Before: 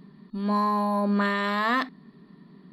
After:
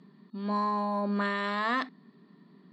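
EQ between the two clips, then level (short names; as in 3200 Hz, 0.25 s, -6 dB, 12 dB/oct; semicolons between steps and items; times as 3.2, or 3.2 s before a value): HPF 170 Hz; LPF 8500 Hz 24 dB/oct; -4.5 dB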